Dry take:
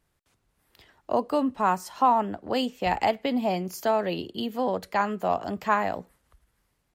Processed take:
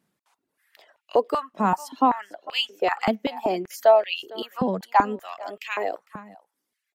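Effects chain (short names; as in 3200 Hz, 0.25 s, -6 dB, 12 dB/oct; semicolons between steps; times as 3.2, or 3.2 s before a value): reverb removal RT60 1.2 s; echo 0.455 s -19.5 dB; stepped high-pass 5.2 Hz 200–2600 Hz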